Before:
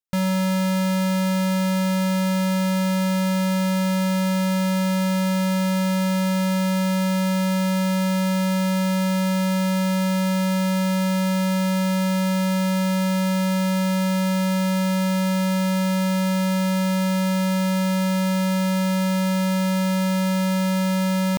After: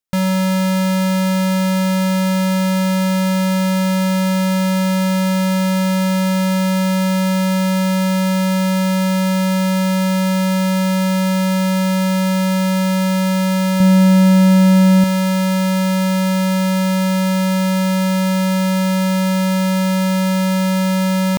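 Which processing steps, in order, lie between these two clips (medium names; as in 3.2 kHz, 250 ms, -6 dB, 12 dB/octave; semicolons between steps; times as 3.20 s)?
13.80–15.04 s: bass shelf 340 Hz +9 dB; trim +5 dB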